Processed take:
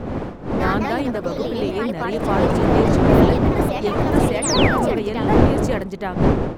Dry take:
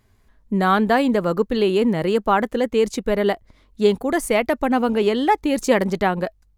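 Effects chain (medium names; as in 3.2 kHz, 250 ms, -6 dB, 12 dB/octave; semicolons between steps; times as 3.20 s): wind noise 380 Hz -14 dBFS; ever faster or slower copies 86 ms, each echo +3 st, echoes 2; painted sound fall, 4.42–5.00 s, 260–10000 Hz -16 dBFS; trim -7 dB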